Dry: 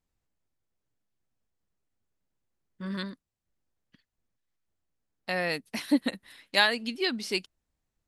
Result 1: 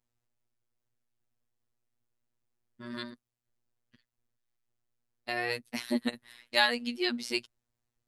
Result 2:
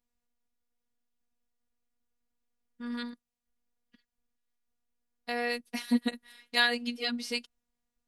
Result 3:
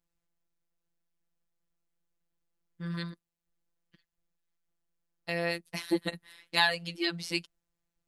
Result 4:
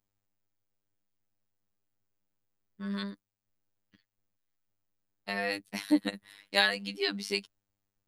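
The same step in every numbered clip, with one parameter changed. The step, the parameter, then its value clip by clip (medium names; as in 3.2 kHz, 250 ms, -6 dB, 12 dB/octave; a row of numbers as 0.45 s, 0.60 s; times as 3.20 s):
robot voice, frequency: 120 Hz, 240 Hz, 170 Hz, 100 Hz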